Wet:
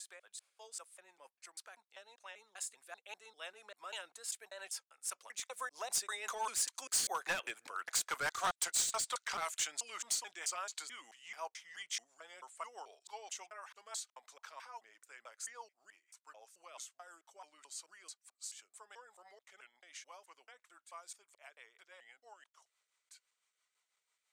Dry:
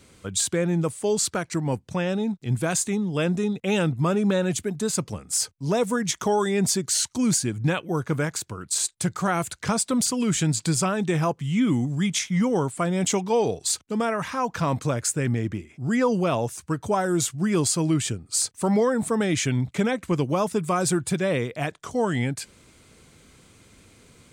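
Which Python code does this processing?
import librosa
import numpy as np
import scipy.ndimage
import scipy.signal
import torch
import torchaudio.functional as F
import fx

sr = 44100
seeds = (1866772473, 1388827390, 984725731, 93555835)

y = fx.block_reorder(x, sr, ms=207.0, group=3)
y = fx.doppler_pass(y, sr, speed_mps=18, closest_m=11.0, pass_at_s=7.91)
y = scipy.signal.sosfilt(scipy.signal.butter(4, 760.0, 'highpass', fs=sr, output='sos'), y)
y = np.clip(10.0 ** (31.5 / 20.0) * y, -1.0, 1.0) / 10.0 ** (31.5 / 20.0)
y = fx.rotary(y, sr, hz=6.0)
y = y * 10.0 ** (3.5 / 20.0)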